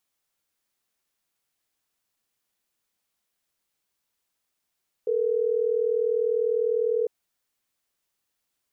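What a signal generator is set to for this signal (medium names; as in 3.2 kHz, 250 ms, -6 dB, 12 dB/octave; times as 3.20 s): call progress tone ringback tone, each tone -24 dBFS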